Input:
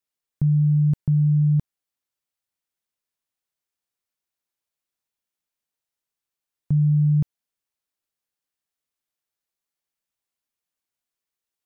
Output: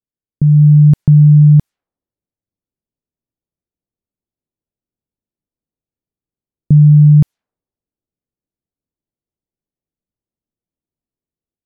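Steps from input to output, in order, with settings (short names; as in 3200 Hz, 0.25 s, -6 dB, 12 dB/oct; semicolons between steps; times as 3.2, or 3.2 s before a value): low-pass opened by the level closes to 320 Hz, open at -20 dBFS; AGC gain up to 6.5 dB; gain +6 dB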